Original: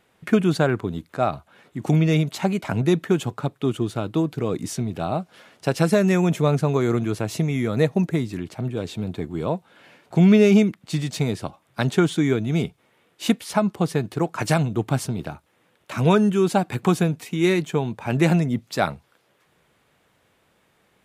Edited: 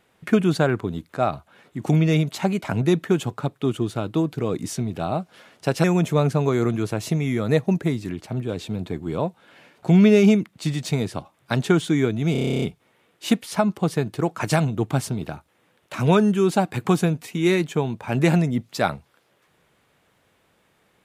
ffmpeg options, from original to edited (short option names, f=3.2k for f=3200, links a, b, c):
-filter_complex "[0:a]asplit=12[a][b][c][d][e][f][g][h][i][j][k][l];[a]atrim=end=5.842[m];[b]atrim=start=6.118:end=12.632[n];[c]atrim=start=12.598:end=12.632[o];[d]atrim=start=12.598:end=12.632[p];[e]atrim=start=12.598:end=12.632[q];[f]atrim=start=12.598:end=12.632[r];[g]atrim=start=12.598:end=12.632[s];[h]atrim=start=12.598:end=12.632[t];[i]atrim=start=12.598:end=12.632[u];[j]atrim=start=12.598:end=12.632[v];[k]atrim=start=12.598:end=12.632[w];[l]atrim=start=12.598[x];[m][n]acrossfade=d=0.004:c1=hsin:c2=hsin[y];[y][o]acrossfade=d=0.004:c1=hsin:c2=hsin[z];[z][p]acrossfade=d=0.004:c1=hsin:c2=hsin[aa];[aa][q]acrossfade=d=0.004:c1=hsin:c2=hsin[ab];[ab][r]acrossfade=d=0.004:c1=hsin:c2=hsin[ac];[ac][s]acrossfade=d=0.004:c1=hsin:c2=hsin[ad];[ad][t]acrossfade=d=0.004:c1=hsin:c2=hsin[ae];[ae][u]acrossfade=d=0.004:c1=hsin:c2=hsin[af];[af][v]acrossfade=d=0.004:c1=hsin:c2=hsin[ag];[ag][w]acrossfade=d=0.004:c1=hsin:c2=hsin[ah];[ah][x]acrossfade=d=0.004:c1=hsin:c2=hsin"